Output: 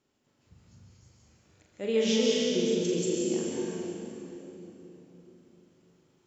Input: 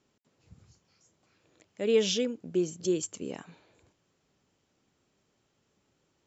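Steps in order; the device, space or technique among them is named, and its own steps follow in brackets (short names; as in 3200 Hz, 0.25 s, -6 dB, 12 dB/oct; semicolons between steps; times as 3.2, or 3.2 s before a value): tunnel (flutter echo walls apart 6.9 m, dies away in 0.5 s; reverb RT60 3.8 s, pre-delay 0.12 s, DRR -4 dB); gain -4 dB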